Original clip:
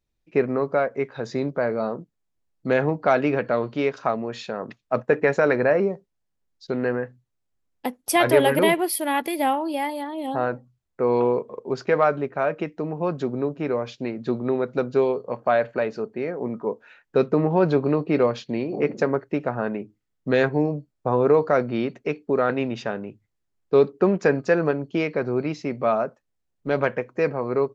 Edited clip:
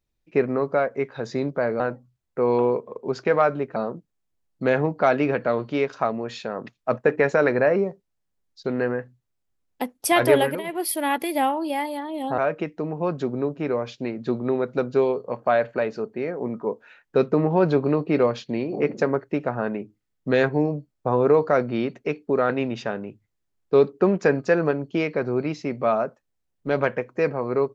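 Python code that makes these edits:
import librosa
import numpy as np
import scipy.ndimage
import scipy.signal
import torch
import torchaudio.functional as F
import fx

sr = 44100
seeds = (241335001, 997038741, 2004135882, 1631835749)

y = fx.edit(x, sr, fx.fade_down_up(start_s=8.41, length_s=0.52, db=-18.5, fade_s=0.26),
    fx.move(start_s=10.42, length_s=1.96, to_s=1.8), tone=tone)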